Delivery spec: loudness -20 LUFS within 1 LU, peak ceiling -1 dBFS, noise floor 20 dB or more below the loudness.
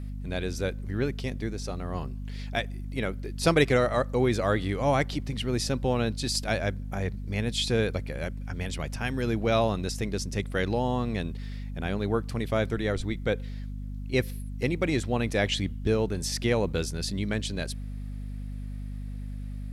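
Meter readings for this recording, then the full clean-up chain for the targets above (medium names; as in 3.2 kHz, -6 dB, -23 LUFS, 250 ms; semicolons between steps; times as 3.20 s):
hum 50 Hz; highest harmonic 250 Hz; hum level -33 dBFS; loudness -29.5 LUFS; peak level -8.0 dBFS; loudness target -20.0 LUFS
-> hum notches 50/100/150/200/250 Hz; trim +9.5 dB; peak limiter -1 dBFS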